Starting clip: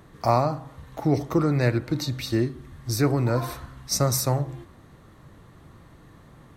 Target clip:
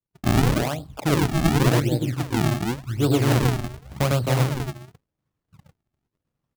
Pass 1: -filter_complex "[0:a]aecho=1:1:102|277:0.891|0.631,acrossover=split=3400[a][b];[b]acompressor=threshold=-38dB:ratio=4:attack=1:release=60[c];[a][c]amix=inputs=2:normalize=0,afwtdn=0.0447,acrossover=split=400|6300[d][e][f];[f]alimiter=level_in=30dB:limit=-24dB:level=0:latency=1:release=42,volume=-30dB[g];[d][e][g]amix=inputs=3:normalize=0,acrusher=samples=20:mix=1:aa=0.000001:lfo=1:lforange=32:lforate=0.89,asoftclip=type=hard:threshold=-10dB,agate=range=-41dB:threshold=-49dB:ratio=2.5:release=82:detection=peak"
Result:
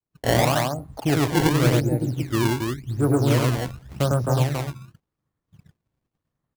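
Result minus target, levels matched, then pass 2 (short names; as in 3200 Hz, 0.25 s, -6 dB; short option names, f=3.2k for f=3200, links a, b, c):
decimation with a swept rate: distortion -6 dB
-filter_complex "[0:a]aecho=1:1:102|277:0.891|0.631,acrossover=split=3400[a][b];[b]acompressor=threshold=-38dB:ratio=4:attack=1:release=60[c];[a][c]amix=inputs=2:normalize=0,afwtdn=0.0447,acrossover=split=400|6300[d][e][f];[f]alimiter=level_in=30dB:limit=-24dB:level=0:latency=1:release=42,volume=-30dB[g];[d][e][g]amix=inputs=3:normalize=0,acrusher=samples=51:mix=1:aa=0.000001:lfo=1:lforange=81.6:lforate=0.89,asoftclip=type=hard:threshold=-10dB,agate=range=-41dB:threshold=-49dB:ratio=2.5:release=82:detection=peak"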